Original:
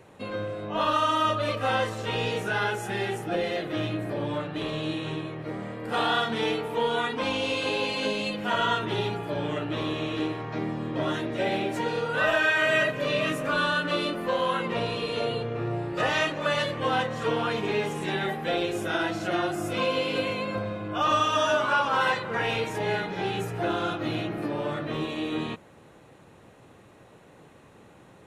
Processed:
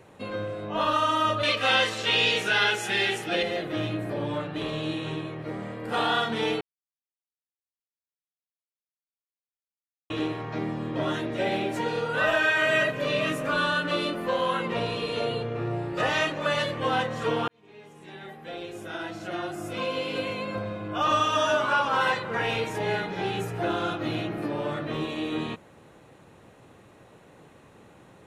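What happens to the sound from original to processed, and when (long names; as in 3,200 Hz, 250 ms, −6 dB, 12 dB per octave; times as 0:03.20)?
0:01.43–0:03.43: meter weighting curve D
0:06.61–0:10.10: silence
0:17.48–0:21.11: fade in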